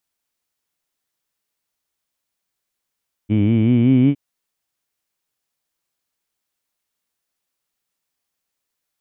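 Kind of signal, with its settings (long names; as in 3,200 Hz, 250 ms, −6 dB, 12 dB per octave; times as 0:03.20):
vowel by formant synthesis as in heed, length 0.86 s, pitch 101 Hz, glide +5.5 semitones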